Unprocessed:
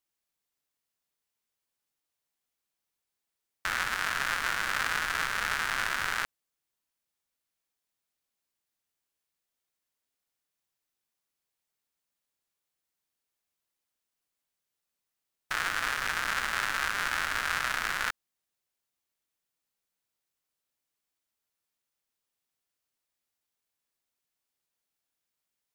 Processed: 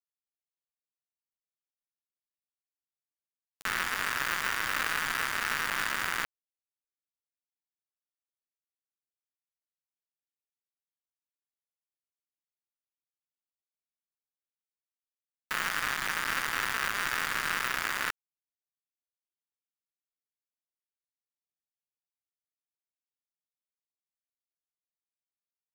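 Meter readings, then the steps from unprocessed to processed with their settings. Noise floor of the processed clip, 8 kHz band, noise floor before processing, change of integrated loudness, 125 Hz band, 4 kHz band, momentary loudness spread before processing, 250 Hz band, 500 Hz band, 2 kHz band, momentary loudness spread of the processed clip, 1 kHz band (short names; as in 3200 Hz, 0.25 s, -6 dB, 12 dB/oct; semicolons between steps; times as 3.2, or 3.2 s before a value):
under -85 dBFS, +0.5 dB, under -85 dBFS, -0.5 dB, -0.5 dB, -0.5 dB, 4 LU, +2.5 dB, 0.0 dB, -1.0 dB, 4 LU, -1.0 dB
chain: tracing distortion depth 0.073 ms; pre-echo 43 ms -15.5 dB; bit-crush 5-bit; gain -1.5 dB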